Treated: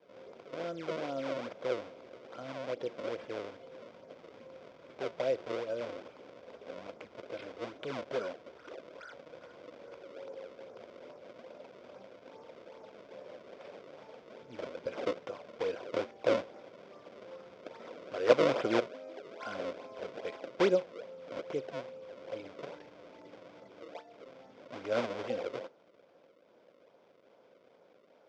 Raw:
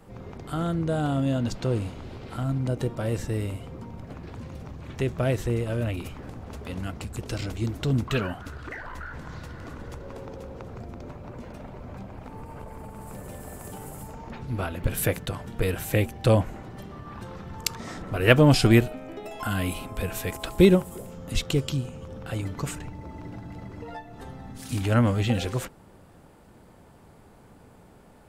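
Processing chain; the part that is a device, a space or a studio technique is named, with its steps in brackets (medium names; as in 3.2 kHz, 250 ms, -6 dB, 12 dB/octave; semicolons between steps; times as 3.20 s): circuit-bent sampling toy (decimation with a swept rate 31×, swing 160% 2.4 Hz; cabinet simulation 510–4300 Hz, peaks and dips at 530 Hz +8 dB, 830 Hz -8 dB, 1.2 kHz -6 dB, 1.8 kHz -9 dB, 2.8 kHz -7 dB, 4.1 kHz -9 dB); trim -4 dB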